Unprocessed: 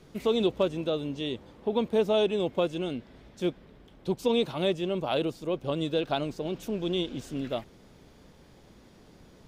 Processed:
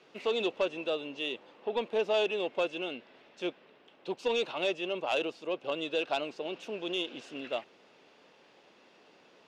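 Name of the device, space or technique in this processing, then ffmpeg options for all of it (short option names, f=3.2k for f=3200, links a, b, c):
intercom: -af "highpass=460,lowpass=4.6k,equalizer=f=2.7k:t=o:w=0.2:g=9.5,asoftclip=type=tanh:threshold=-20dB"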